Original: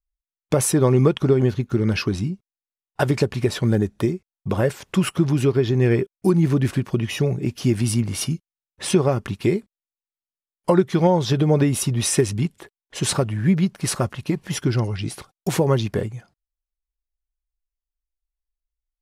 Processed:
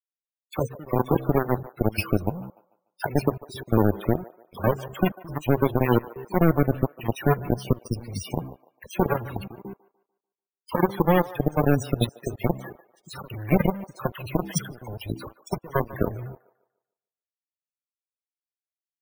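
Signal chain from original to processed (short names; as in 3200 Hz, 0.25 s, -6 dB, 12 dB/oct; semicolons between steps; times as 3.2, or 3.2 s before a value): high shelf 8200 Hz +9.5 dB; de-hum 65.57 Hz, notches 7; in parallel at +3 dB: compressor 12:1, threshold -28 dBFS, peak gain reduction 17.5 dB; on the sum: limiter -9.5 dBFS, peak gain reduction 6.5 dB; step gate "x.xxxxxx.." 172 bpm -24 dB; dispersion lows, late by 57 ms, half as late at 1500 Hz; companded quantiser 2-bit; loudest bins only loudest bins 32; on a send: band-limited delay 0.147 s, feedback 35%, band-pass 910 Hz, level -16.5 dB; on the sum: careless resampling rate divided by 3×, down filtered, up hold; gain -8.5 dB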